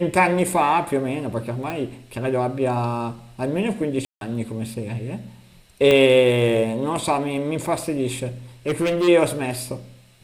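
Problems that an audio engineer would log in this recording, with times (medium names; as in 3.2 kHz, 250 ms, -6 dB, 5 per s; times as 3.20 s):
1.70 s: pop -15 dBFS
4.05–4.21 s: dropout 162 ms
5.91 s: pop -7 dBFS
8.67–9.09 s: clipped -17 dBFS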